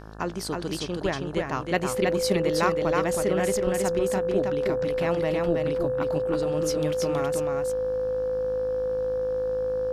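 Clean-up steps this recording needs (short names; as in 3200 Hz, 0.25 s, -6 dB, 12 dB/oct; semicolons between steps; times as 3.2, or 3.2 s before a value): de-hum 53.4 Hz, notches 33; notch 510 Hz, Q 30; inverse comb 0.321 s -3.5 dB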